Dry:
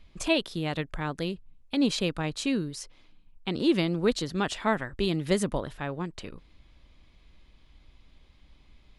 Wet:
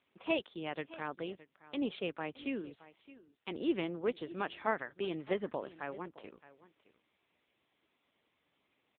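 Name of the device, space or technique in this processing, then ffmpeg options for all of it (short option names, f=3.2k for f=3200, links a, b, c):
satellite phone: -filter_complex "[0:a]asettb=1/sr,asplit=3[a][b][c];[a]atrim=end=1.774[d];[b]atrim=start=1.77:end=3.49,asetpts=PTS-STARTPTS,afade=t=in:d=0.004:c=qsin,afade=t=out:st=1.716:d=0.004:c=qsin,highpass=f=80:w=0.5412,highpass=f=80:w=1.3066[e];[c]atrim=start=3.486[f];[d][e]acrossfade=d=0.004:c1=hsin:c2=qsin[g];[g][f]acrossfade=d=0.004:c1=qsin:c2=hsin,highpass=320,lowpass=3.4k,aecho=1:1:618:0.126,volume=-5.5dB" -ar 8000 -c:a libopencore_amrnb -b:a 6700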